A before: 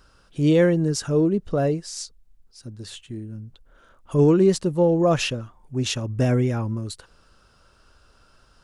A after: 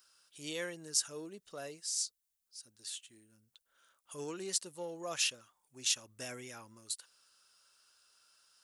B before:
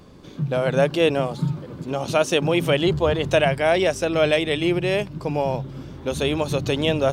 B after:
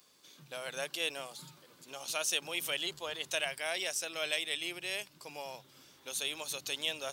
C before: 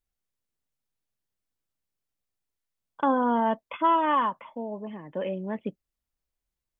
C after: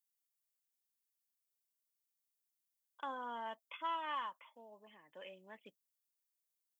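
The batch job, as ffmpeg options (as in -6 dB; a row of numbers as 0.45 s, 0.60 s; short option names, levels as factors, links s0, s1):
-af "aeval=exprs='0.473*(cos(1*acos(clip(val(0)/0.473,-1,1)))-cos(1*PI/2))+0.00596*(cos(4*acos(clip(val(0)/0.473,-1,1)))-cos(4*PI/2))':c=same,aderivative"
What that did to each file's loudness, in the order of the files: -16.0 LU, -14.0 LU, -16.5 LU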